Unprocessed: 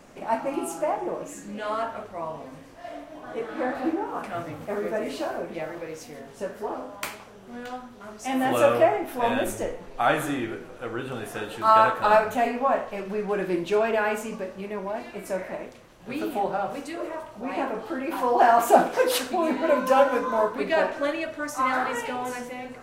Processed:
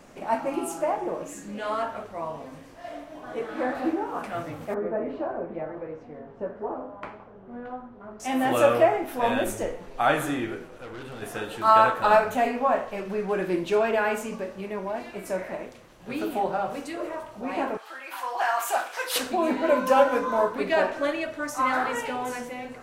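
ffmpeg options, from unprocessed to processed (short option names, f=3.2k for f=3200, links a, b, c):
-filter_complex "[0:a]asettb=1/sr,asplit=3[a][b][c];[a]atrim=end=4.744[d];[b]atrim=start=4.74:end=8.2,asetpts=PTS-STARTPTS,afade=t=in:d=0.004:c=qsin,afade=t=out:st=3.456:d=0.004:c=qsin,lowpass=1.2k[e];[c]atrim=start=8.196[f];[d][e]acrossfade=d=0.004:c1=hsin:c2=qsin[g];[g][f]acrossfade=d=0.004:c1=qsin:c2=hsin,asettb=1/sr,asplit=3[h][i][j];[h]atrim=end=10.654[k];[i]atrim=start=10.65:end=11.22,asetpts=PTS-STARTPTS,afade=t=in:d=0.004:c=qsin,afade=t=out:st=0.566:d=0.004:c=qsin,aeval=exprs='(tanh(63.1*val(0)+0.4)-tanh(0.4))/63.1':c=same[l];[j]atrim=start=11.216[m];[k][l]acrossfade=d=0.004:c1=hsin:c2=qsin[n];[n][m]acrossfade=d=0.004:c1=qsin:c2=hsin,asettb=1/sr,asplit=3[o][p][q];[o]atrim=end=17.774[r];[p]atrim=start=17.77:end=19.16,asetpts=PTS-STARTPTS,afade=t=in:d=0.004:c=qsin,afade=t=out:st=1.386:d=0.004:c=qsin,highpass=1.2k[s];[q]atrim=start=19.156[t];[r][s]acrossfade=d=0.004:c1=hsin:c2=qsin[u];[u][t]acrossfade=d=0.004:c1=qsin:c2=hsin"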